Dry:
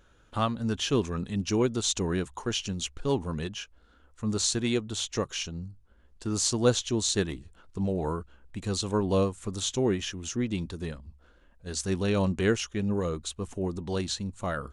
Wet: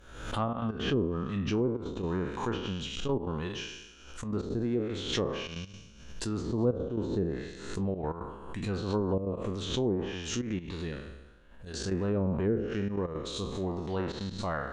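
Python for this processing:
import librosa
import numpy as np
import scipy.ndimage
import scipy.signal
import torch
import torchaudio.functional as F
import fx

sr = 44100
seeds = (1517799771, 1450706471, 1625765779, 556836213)

y = fx.spec_trails(x, sr, decay_s=1.01)
y = fx.env_lowpass_down(y, sr, base_hz=490.0, full_db=-19.5)
y = fx.step_gate(y, sr, bpm=170, pattern='xxxxxx.x.xxxxx', floor_db=-12.0, edge_ms=4.5)
y = fx.pre_swell(y, sr, db_per_s=69.0)
y = y * 10.0 ** (-3.5 / 20.0)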